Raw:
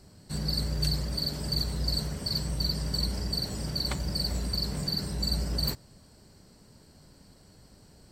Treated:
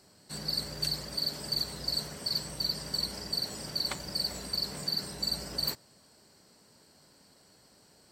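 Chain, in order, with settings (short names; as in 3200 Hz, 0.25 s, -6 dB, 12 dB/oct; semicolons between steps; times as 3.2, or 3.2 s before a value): HPF 500 Hz 6 dB/oct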